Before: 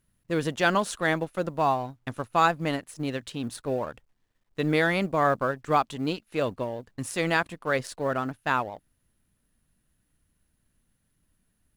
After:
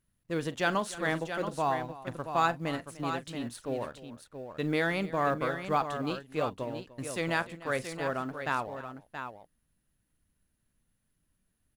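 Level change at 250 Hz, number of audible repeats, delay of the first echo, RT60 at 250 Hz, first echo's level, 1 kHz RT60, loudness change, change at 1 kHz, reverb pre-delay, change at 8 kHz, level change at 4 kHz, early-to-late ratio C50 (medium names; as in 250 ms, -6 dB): -4.5 dB, 3, 42 ms, no reverb, -17.0 dB, no reverb, -5.0 dB, -4.5 dB, no reverb, -5.0 dB, -5.0 dB, no reverb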